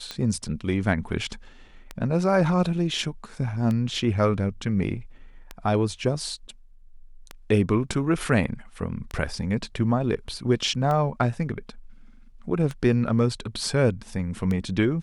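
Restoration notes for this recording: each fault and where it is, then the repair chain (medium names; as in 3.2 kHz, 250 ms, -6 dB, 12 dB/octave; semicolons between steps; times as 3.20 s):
tick 33 1/3 rpm -17 dBFS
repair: de-click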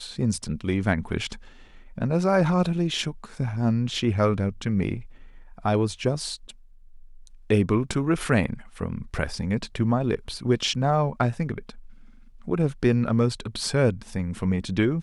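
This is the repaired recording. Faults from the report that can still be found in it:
nothing left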